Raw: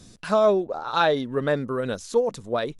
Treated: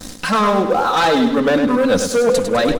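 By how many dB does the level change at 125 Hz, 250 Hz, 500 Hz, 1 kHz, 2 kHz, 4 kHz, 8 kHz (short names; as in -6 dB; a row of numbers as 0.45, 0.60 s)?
+5.5, +13.0, +6.5, +9.5, +9.5, +10.0, +16.0 dB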